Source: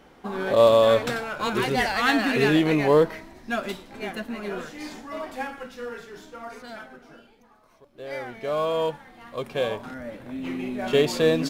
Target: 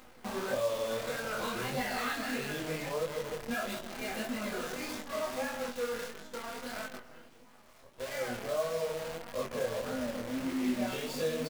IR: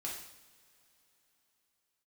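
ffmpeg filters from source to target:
-filter_complex "[0:a]asplit=2[link_01][link_02];[link_02]adelay=156,lowpass=frequency=1200:poles=1,volume=-9dB,asplit=2[link_03][link_04];[link_04]adelay=156,lowpass=frequency=1200:poles=1,volume=0.39,asplit=2[link_05][link_06];[link_06]adelay=156,lowpass=frequency=1200:poles=1,volume=0.39,asplit=2[link_07][link_08];[link_08]adelay=156,lowpass=frequency=1200:poles=1,volume=0.39[link_09];[link_01][link_03][link_05][link_07][link_09]amix=inputs=5:normalize=0,acompressor=threshold=-30dB:ratio=10,asettb=1/sr,asplit=3[link_10][link_11][link_12];[link_10]atrim=end=8.354[link_13];[link_11]atrim=start=8.35:end=10.58,asetpts=PTS-STARTPTS,afade=type=in:duration=0.004:curve=qsin,afade=type=out:start_time=2.226:duration=0.004:curve=qsin,lowpass=frequency=1800:width=0.5412,lowpass=frequency=1800:width=1.3066[link_14];[link_12]atrim=start=10.576[link_15];[link_13][link_14]acrossfade=duration=0.004:curve1=hsin:curve2=qsin[link_16];[link_16][link_15]acrossfade=duration=0.004:curve1=qsin:curve2=hsin[link_17];[1:a]atrim=start_sample=2205,atrim=end_sample=6174,asetrate=79380,aresample=44100[link_18];[link_17][link_18]afir=irnorm=-1:irlink=0,acrusher=bits=8:dc=4:mix=0:aa=0.000001,acompressor=mode=upward:threshold=-55dB:ratio=2.5,flanger=delay=19:depth=7.7:speed=1.6,volume=7dB"

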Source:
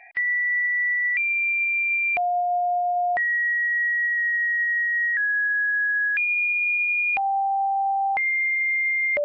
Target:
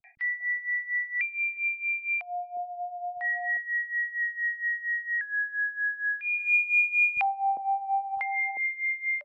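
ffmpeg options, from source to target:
ffmpeg -i in.wav -filter_complex "[0:a]asplit=3[link_01][link_02][link_03];[link_01]afade=type=out:start_time=6.35:duration=0.02[link_04];[link_02]acontrast=53,afade=type=in:start_time=6.35:duration=0.02,afade=type=out:start_time=8.1:duration=0.02[link_05];[link_03]afade=type=in:start_time=8.1:duration=0.02[link_06];[link_04][link_05][link_06]amix=inputs=3:normalize=0,tremolo=f=4.3:d=0.84,acrossover=split=190|640[link_07][link_08][link_09];[link_09]adelay=40[link_10];[link_08]adelay=400[link_11];[link_07][link_11][link_10]amix=inputs=3:normalize=0,volume=-3.5dB" out.wav

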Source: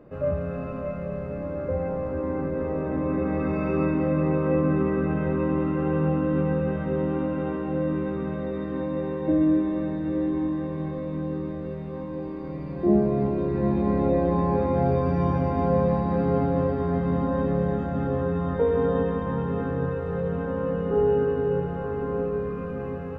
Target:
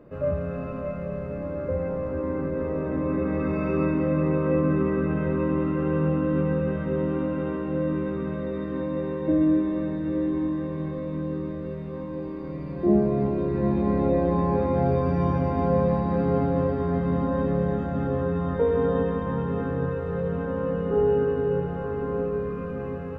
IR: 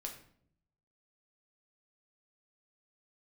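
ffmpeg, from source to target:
-af "bandreject=frequency=770:width=12"

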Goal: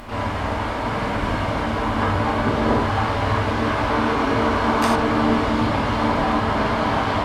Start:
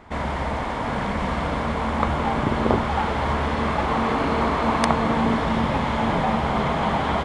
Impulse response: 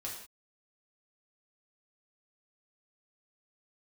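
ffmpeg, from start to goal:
-filter_complex "[0:a]asplit=3[link_01][link_02][link_03];[link_02]asetrate=58866,aresample=44100,atempo=0.749154,volume=-5dB[link_04];[link_03]asetrate=66075,aresample=44100,atempo=0.66742,volume=-12dB[link_05];[link_01][link_04][link_05]amix=inputs=3:normalize=0,acompressor=mode=upward:threshold=-28dB:ratio=2.5[link_06];[1:a]atrim=start_sample=2205,atrim=end_sample=4410,asetrate=38367,aresample=44100[link_07];[link_06][link_07]afir=irnorm=-1:irlink=0"

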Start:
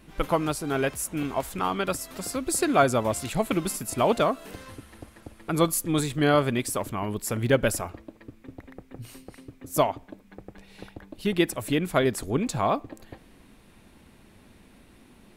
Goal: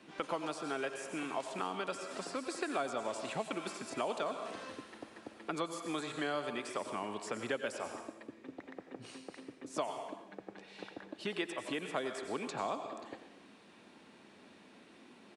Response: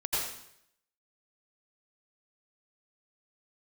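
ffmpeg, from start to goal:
-filter_complex "[0:a]highpass=89,acrossover=split=200 6900:gain=0.1 1 0.224[link_01][link_02][link_03];[link_01][link_02][link_03]amix=inputs=3:normalize=0,aresample=22050,aresample=44100,asplit=2[link_04][link_05];[link_05]aemphasis=mode=production:type=75fm[link_06];[1:a]atrim=start_sample=2205,highshelf=frequency=5300:gain=-12[link_07];[link_06][link_07]afir=irnorm=-1:irlink=0,volume=-14.5dB[link_08];[link_04][link_08]amix=inputs=2:normalize=0,acrossover=split=630|2600|5800[link_09][link_10][link_11][link_12];[link_09]acompressor=threshold=-39dB:ratio=4[link_13];[link_10]acompressor=threshold=-37dB:ratio=4[link_14];[link_11]acompressor=threshold=-51dB:ratio=4[link_15];[link_12]acompressor=threshold=-52dB:ratio=4[link_16];[link_13][link_14][link_15][link_16]amix=inputs=4:normalize=0,bandreject=frequency=2100:width=29,volume=-2.5dB"

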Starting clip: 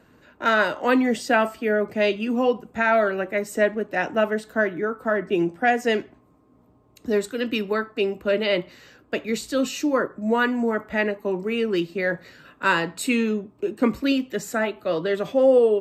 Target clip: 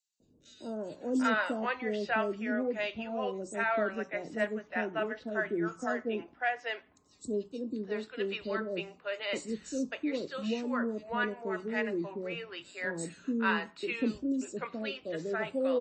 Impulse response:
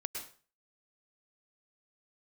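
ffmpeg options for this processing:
-filter_complex "[0:a]bandreject=frequency=60:width_type=h:width=6,bandreject=frequency=120:width_type=h:width=6,bandreject=frequency=180:width_type=h:width=6,acrossover=split=570|5000[link_01][link_02][link_03];[link_01]adelay=200[link_04];[link_02]adelay=790[link_05];[link_04][link_05][link_03]amix=inputs=3:normalize=0,volume=-8.5dB" -ar 24000 -c:a libmp3lame -b:a 32k

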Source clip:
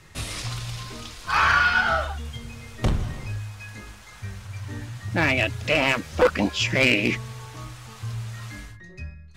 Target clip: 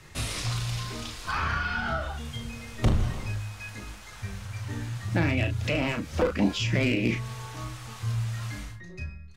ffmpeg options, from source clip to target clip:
ffmpeg -i in.wav -filter_complex "[0:a]asplit=2[link_01][link_02];[link_02]adelay=35,volume=-7dB[link_03];[link_01][link_03]amix=inputs=2:normalize=0,acrossover=split=380[link_04][link_05];[link_05]acompressor=threshold=-30dB:ratio=4[link_06];[link_04][link_06]amix=inputs=2:normalize=0" out.wav

